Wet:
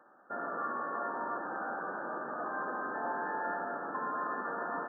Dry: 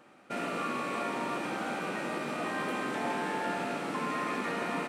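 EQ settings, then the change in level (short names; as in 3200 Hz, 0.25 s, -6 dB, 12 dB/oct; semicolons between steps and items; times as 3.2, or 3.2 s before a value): band-pass 1300 Hz, Q 0.58; brick-wall FIR low-pass 1800 Hz; 0.0 dB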